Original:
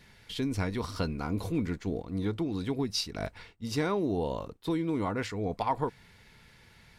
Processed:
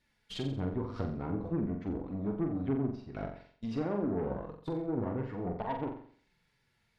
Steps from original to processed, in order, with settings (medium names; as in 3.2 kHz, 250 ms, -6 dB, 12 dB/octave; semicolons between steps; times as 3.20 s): gate -43 dBFS, range -15 dB; low-pass that closes with the level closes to 710 Hz, closed at -28.5 dBFS; flange 0.51 Hz, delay 3.2 ms, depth 5.6 ms, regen +28%; Chebyshev shaper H 8 -23 dB, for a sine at -19.5 dBFS; flutter echo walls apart 7.6 m, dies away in 0.52 s